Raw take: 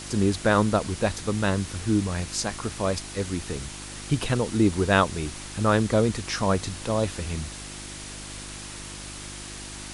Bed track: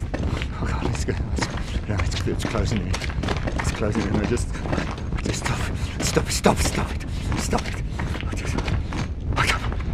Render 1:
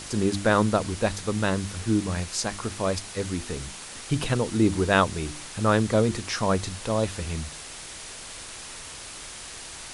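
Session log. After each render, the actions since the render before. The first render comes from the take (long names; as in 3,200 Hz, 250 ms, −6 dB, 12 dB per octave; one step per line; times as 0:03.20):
hum removal 50 Hz, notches 7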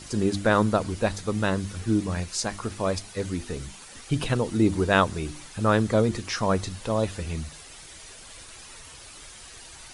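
broadband denoise 9 dB, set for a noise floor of −41 dBFS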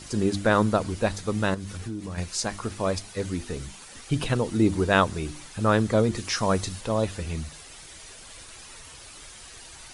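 0:01.54–0:02.18: downward compressor, threshold −30 dBFS
0:06.17–0:06.81: high-shelf EQ 4,500 Hz +6 dB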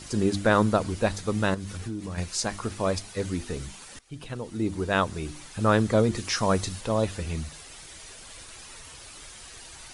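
0:03.99–0:05.65: fade in linear, from −20 dB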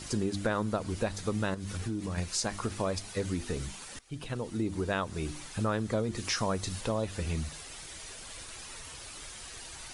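downward compressor 4 to 1, threshold −28 dBFS, peak gain reduction 11 dB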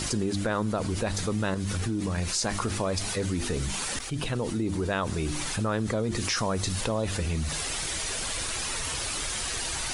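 envelope flattener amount 70%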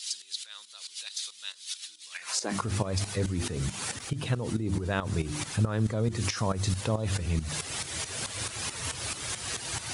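high-pass filter sweep 3,700 Hz → 100 Hz, 0:02.09–0:02.64
shaped tremolo saw up 4.6 Hz, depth 75%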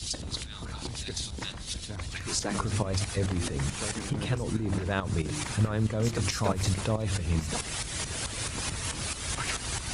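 mix in bed track −14 dB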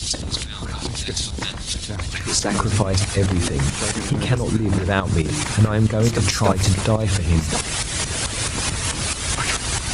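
level +10 dB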